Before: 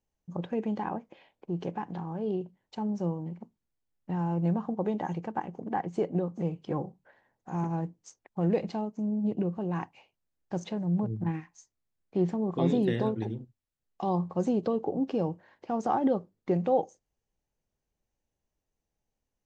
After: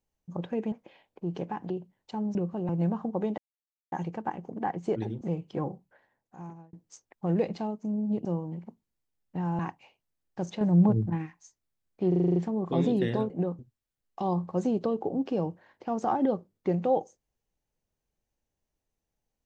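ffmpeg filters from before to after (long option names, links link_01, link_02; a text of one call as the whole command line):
ffmpeg -i in.wav -filter_complex "[0:a]asplit=22[link_01][link_02][link_03][link_04][link_05][link_06][link_07][link_08][link_09][link_10][link_11][link_12][link_13][link_14][link_15][link_16][link_17][link_18][link_19][link_20][link_21][link_22];[link_01]atrim=end=0.722[link_23];[link_02]atrim=start=0.978:end=1.962[link_24];[link_03]atrim=start=2.338:end=2.992[link_25];[link_04]atrim=start=9.388:end=9.732[link_26];[link_05]atrim=start=4.328:end=5.02,asetpts=PTS-STARTPTS,afade=type=out:start_time=0.688:duration=0.004:curve=hsin,apad=pad_dur=0.54[link_27];[link_06]atrim=start=5.02:end=6.062,asetpts=PTS-STARTPTS,afade=type=in:duration=0.004:curve=hsin[link_28];[link_07]atrim=start=13.158:end=13.412[link_29];[link_08]atrim=start=6.348:end=7.87,asetpts=PTS-STARTPTS,afade=type=out:start_time=0.522:duration=1[link_30];[link_09]atrim=start=7.87:end=9.392,asetpts=PTS-STARTPTS,afade=type=in:duration=0.004:curve=hsin[link_31];[link_10]atrim=start=2.988:end=4.332[link_32];[link_11]atrim=start=9.728:end=10.752[link_33];[link_12]atrim=start=10.748:end=11.202,asetpts=PTS-STARTPTS,volume=7.5dB[link_34];[link_13]atrim=start=11.198:end=12.262[link_35];[link_14]atrim=start=12.218:end=12.262[link_36];[link_15]atrim=start=12.218:end=12.262[link_37];[link_16]atrim=start=12.218:end=12.262[link_38];[link_17]atrim=start=12.218:end=12.262[link_39];[link_18]atrim=start=12.218:end=12.262[link_40];[link_19]atrim=start=12.218:end=12.262[link_41];[link_20]atrim=start=12.218:end=13.162[link_42];[link_21]atrim=start=6.058:end=6.352[link_43];[link_22]atrim=start=13.408[link_44];[link_23][link_24]acrossfade=duration=0.004:curve1=hsin:curve2=hsin[link_45];[link_45][link_25]acrossfade=duration=0.004:curve1=hsin:curve2=hsin[link_46];[link_46][link_26]acrossfade=duration=0.004:curve1=hsin:curve2=hsin[link_47];[link_27][link_28]concat=n=2:v=0:a=1[link_48];[link_47][link_48]acrossfade=duration=0.004:curve1=hsin:curve2=hsin[link_49];[link_49][link_29]acrossfade=duration=0.004:curve1=hsin:curve2=hsin[link_50];[link_30][link_31]concat=n=2:v=0:a=1[link_51];[link_50][link_51]acrossfade=duration=0.004:curve1=hsin:curve2=hsin[link_52];[link_52][link_32]acrossfade=duration=0.004:curve1=hsin:curve2=hsin[link_53];[link_53][link_33]acrossfade=duration=0.004:curve1=hsin:curve2=hsin[link_54];[link_54][link_34]acrossfade=duration=0.004:curve1=hsin:curve2=hsin[link_55];[link_55][link_35]acrossfade=duration=0.004:curve1=hsin:curve2=hsin[link_56];[link_56][link_36]acrossfade=duration=0.004:curve1=hsin:curve2=hsin[link_57];[link_57][link_37]acrossfade=duration=0.004:curve1=hsin:curve2=hsin[link_58];[link_58][link_38]acrossfade=duration=0.004:curve1=hsin:curve2=hsin[link_59];[link_59][link_39]acrossfade=duration=0.004:curve1=hsin:curve2=hsin[link_60];[link_60][link_40]acrossfade=duration=0.004:curve1=hsin:curve2=hsin[link_61];[link_61][link_41]acrossfade=duration=0.004:curve1=hsin:curve2=hsin[link_62];[link_62][link_42]acrossfade=duration=0.004:curve1=hsin:curve2=hsin[link_63];[link_63][link_43]acrossfade=duration=0.004:curve1=hsin:curve2=hsin[link_64];[link_64][link_44]acrossfade=duration=0.004:curve1=hsin:curve2=hsin" out.wav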